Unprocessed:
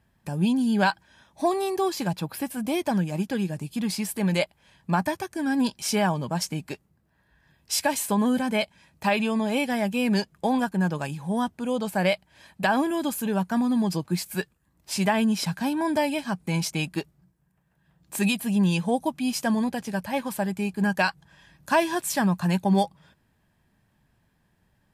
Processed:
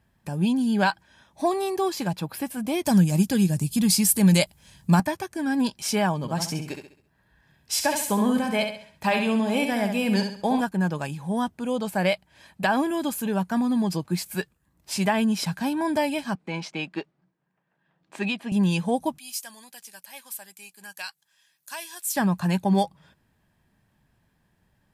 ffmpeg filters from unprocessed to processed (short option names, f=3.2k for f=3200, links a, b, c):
-filter_complex "[0:a]asettb=1/sr,asplit=3[a][b][c];[a]atrim=end=2.854[d];[b]atrim=start=2.85:end=5,asetpts=PTS-STARTPTS,afade=t=in:d=0.004:c=qsin,afade=t=out:st=2.146:d=0.004:c=qsin,bass=f=250:g=10,treble=f=4k:g=14[e];[c]atrim=start=4.996[f];[d][e]acrossfade=d=0.004:c1=hsin:c2=qsin[g];[g][f]acrossfade=d=0.004:c1=qsin:c2=hsin,asettb=1/sr,asplit=3[h][i][j];[h]atrim=end=6.174[k];[i]atrim=start=6.17:end=10.61,asetpts=PTS-STARTPTS,afade=t=in:d=0.004:c=qsin,afade=t=out:st=4.436:d=0.004:c=qsin,aecho=1:1:67|134|201|268|335:0.473|0.185|0.072|0.0281|0.0109,atrim=end_sample=195804[l];[j]atrim=start=10.606[m];[k][l]acrossfade=d=0.004:c1=hsin:c2=qsin[n];[n][m]acrossfade=d=0.004:c1=qsin:c2=hsin,asettb=1/sr,asplit=3[o][p][q];[o]atrim=end=16.354[r];[p]atrim=start=16.35:end=18.52,asetpts=PTS-STARTPTS,afade=t=in:d=0.004:c=qsin,afade=t=out:st=2.166:d=0.004:c=qsin,highpass=260,lowpass=3.4k[s];[q]atrim=start=18.516[t];[r][s]acrossfade=d=0.004:c1=hsin:c2=qsin[u];[u][t]acrossfade=d=0.004:c1=qsin:c2=hsin,asettb=1/sr,asplit=3[v][w][x];[v]atrim=end=19.184[y];[w]atrim=start=19.18:end=22.16,asetpts=PTS-STARTPTS,afade=t=in:d=0.004:c=qsin,afade=t=out:st=2.976:d=0.004:c=qsin,aderivative[z];[x]atrim=start=22.156[aa];[y][z]acrossfade=d=0.004:c1=hsin:c2=qsin[ab];[ab][aa]acrossfade=d=0.004:c1=qsin:c2=hsin"